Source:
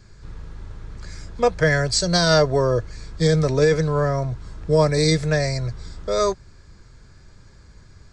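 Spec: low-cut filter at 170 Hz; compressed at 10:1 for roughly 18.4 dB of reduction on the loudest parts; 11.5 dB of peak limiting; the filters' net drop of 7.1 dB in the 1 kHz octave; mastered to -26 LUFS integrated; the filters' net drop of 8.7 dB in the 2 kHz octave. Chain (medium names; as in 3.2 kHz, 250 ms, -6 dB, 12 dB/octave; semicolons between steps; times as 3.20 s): high-pass 170 Hz; peaking EQ 1 kHz -8 dB; peaking EQ 2 kHz -8 dB; compression 10:1, threshold -34 dBFS; trim +18.5 dB; peak limiter -16.5 dBFS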